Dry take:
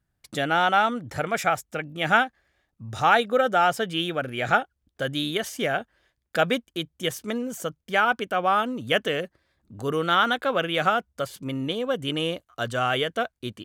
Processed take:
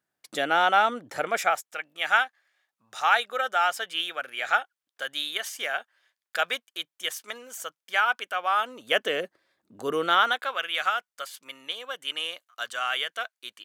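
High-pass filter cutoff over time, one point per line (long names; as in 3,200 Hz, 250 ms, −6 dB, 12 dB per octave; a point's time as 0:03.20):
0:01.30 350 Hz
0:01.76 980 Hz
0:08.49 980 Hz
0:09.23 310 Hz
0:10.02 310 Hz
0:10.55 1,200 Hz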